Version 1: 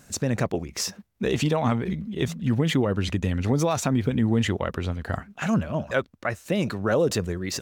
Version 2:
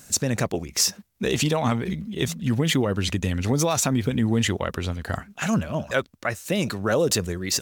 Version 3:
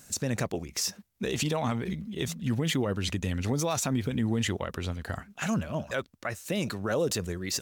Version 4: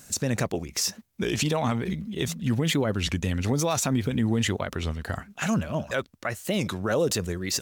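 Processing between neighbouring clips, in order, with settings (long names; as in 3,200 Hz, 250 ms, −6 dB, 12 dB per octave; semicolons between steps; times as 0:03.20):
high-shelf EQ 3,500 Hz +10.5 dB
brickwall limiter −14 dBFS, peak gain reduction 7.5 dB; level −5 dB
wow of a warped record 33 1/3 rpm, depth 160 cents; level +3.5 dB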